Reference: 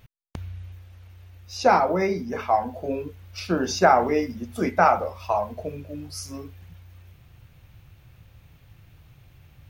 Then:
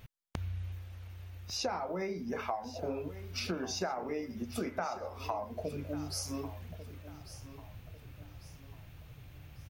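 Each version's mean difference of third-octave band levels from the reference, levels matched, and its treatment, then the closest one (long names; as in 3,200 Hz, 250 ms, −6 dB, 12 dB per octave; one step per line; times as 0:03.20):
10.5 dB: downward compressor 10 to 1, threshold −33 dBFS, peak gain reduction 21 dB
repeating echo 1,145 ms, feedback 39%, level −14.5 dB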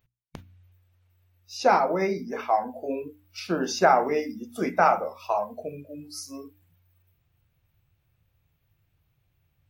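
5.5 dB: noise reduction from a noise print of the clip's start 16 dB
mains-hum notches 60/120/180/240/300 Hz
level −2 dB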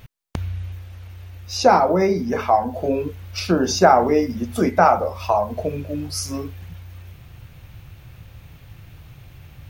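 3.0 dB: dynamic equaliser 2,300 Hz, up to −6 dB, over −38 dBFS, Q 0.79
in parallel at −1.5 dB: downward compressor, threshold −29 dBFS, peak gain reduction 15 dB
on the sum: level +3.5 dB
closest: third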